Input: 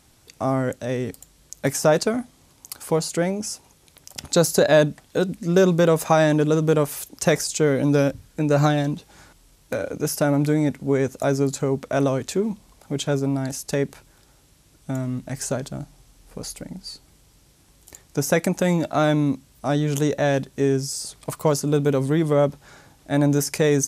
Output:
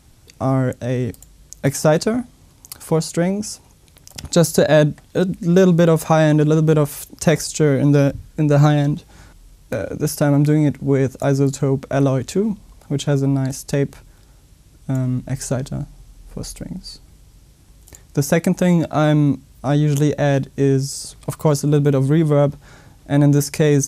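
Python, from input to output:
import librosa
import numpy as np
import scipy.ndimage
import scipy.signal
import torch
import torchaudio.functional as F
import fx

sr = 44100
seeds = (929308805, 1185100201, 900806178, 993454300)

y = fx.low_shelf(x, sr, hz=180.0, db=11.0)
y = y * librosa.db_to_amplitude(1.0)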